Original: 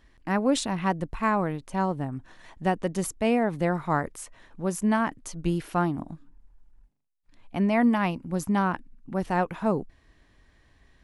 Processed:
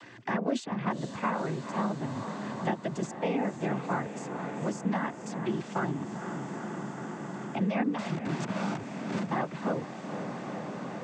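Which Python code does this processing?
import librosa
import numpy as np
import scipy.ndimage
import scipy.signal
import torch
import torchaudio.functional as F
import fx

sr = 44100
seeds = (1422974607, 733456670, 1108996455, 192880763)

y = fx.schmitt(x, sr, flips_db=-36.0, at=(7.98, 9.29))
y = fx.noise_vocoder(y, sr, seeds[0], bands=16)
y = fx.echo_diffused(y, sr, ms=470, feedback_pct=75, wet_db=-14.0)
y = fx.band_squash(y, sr, depth_pct=70)
y = F.gain(torch.from_numpy(y), -5.0).numpy()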